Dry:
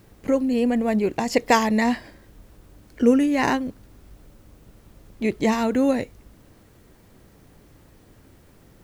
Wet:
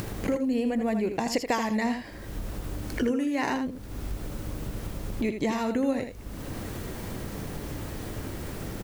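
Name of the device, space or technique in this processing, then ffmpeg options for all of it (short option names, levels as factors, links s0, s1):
upward and downward compression: -filter_complex "[0:a]acompressor=mode=upward:threshold=0.0631:ratio=2.5,acompressor=threshold=0.0355:ratio=3,asettb=1/sr,asplit=3[s0][s1][s2];[s0]atrim=end=3.044[s3];[s1]atrim=start=3.04:end=3.5,asetpts=PTS-STARTPTS,afade=t=in:d=0.004:c=qsin,afade=t=out:st=0.456:d=0.004:c=qsin,highpass=f=160:p=1[s4];[s2]atrim=start=3.496[s5];[s3][s4]acrossfade=d=0.004:c1=hsin:c2=qsin[s6];[s6][s5]acrossfade=d=0.004:c1=qsin:c2=hsin,aecho=1:1:80:0.398,volume=1.26"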